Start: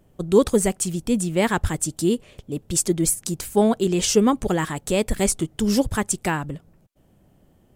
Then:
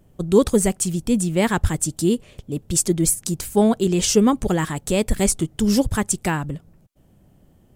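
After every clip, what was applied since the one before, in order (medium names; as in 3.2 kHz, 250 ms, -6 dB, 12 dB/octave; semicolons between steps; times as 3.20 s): tone controls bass +4 dB, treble +2 dB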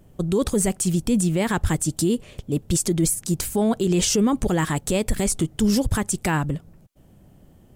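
peak limiter -15 dBFS, peak gain reduction 12 dB; trim +3 dB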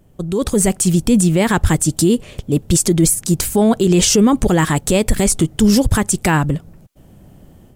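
level rider gain up to 8 dB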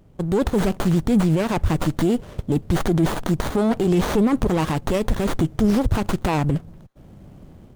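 peak limiter -10 dBFS, peak gain reduction 5.5 dB; sliding maximum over 17 samples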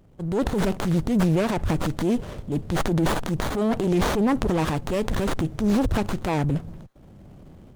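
transient shaper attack -8 dB, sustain +6 dB; loudspeaker Doppler distortion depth 0.25 ms; trim -2 dB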